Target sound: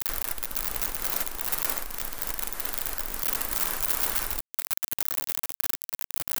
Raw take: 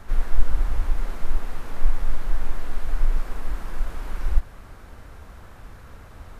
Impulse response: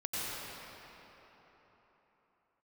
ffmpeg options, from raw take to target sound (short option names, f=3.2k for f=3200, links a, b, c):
-af "acompressor=threshold=-22dB:ratio=5,aeval=exprs='val(0)*gte(abs(val(0)),0.0168)':c=same,aemphasis=mode=production:type=riaa,volume=6.5dB"